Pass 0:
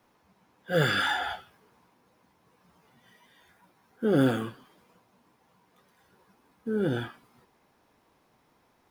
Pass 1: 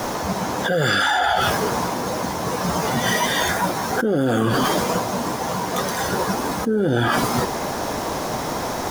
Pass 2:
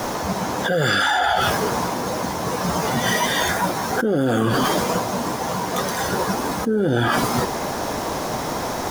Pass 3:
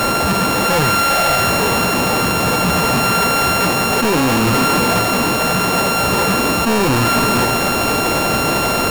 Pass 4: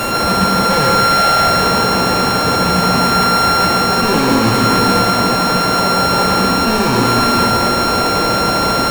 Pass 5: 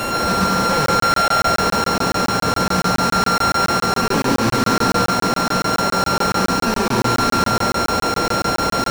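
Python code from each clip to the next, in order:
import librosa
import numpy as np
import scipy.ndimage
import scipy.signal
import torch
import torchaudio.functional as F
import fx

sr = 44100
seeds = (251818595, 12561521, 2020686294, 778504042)

y1 = fx.graphic_eq_15(x, sr, hz=(630, 2500, 6300), db=(5, -5, 7))
y1 = fx.env_flatten(y1, sr, amount_pct=100)
y2 = y1
y3 = np.r_[np.sort(y2[:len(y2) // 32 * 32].reshape(-1, 32), axis=1).ravel(), y2[len(y2) // 32 * 32:]]
y3 = fx.leveller(y3, sr, passes=5)
y3 = y3 + 10.0 ** (-10.0 / 20.0) * np.pad(y3, (int(501 * sr / 1000.0), 0))[:len(y3)]
y3 = y3 * 10.0 ** (-5.0 / 20.0)
y4 = fx.rev_plate(y3, sr, seeds[0], rt60_s=1.1, hf_ratio=0.6, predelay_ms=100, drr_db=-0.5)
y4 = y4 * 10.0 ** (-2.0 / 20.0)
y5 = fx.room_flutter(y4, sr, wall_m=11.8, rt60_s=0.33)
y5 = fx.buffer_crackle(y5, sr, first_s=0.86, period_s=0.14, block=1024, kind='zero')
y5 = fx.doppler_dist(y5, sr, depth_ms=0.11)
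y5 = y5 * 10.0 ** (-4.0 / 20.0)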